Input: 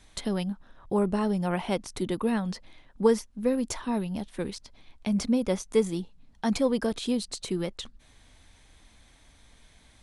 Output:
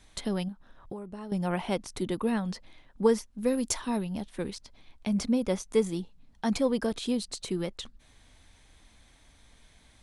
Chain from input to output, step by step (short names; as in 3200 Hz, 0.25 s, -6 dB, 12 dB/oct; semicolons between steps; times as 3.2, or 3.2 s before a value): 0.48–1.32 compressor 16:1, threshold -35 dBFS, peak gain reduction 15.5 dB; 3.38–3.97 high shelf 3700 Hz +8.5 dB; gain -1.5 dB